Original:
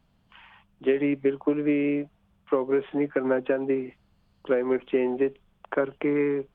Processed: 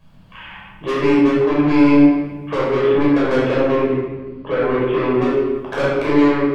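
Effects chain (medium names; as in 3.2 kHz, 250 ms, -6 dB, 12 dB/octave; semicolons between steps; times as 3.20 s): saturation -29 dBFS, distortion -7 dB; 3.84–5.15 s: low-pass 2.4 kHz -> 3.1 kHz 12 dB/octave; reverberation RT60 1.3 s, pre-delay 12 ms, DRR -7.5 dB; trim +5.5 dB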